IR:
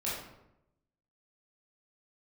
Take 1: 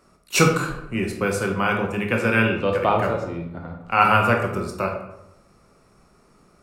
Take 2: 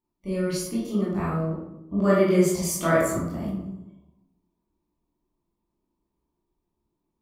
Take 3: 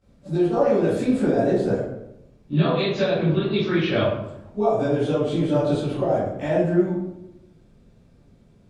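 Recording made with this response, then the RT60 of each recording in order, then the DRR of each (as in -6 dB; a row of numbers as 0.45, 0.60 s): 2; 0.85, 0.85, 0.85 s; 2.0, -8.0, -15.5 dB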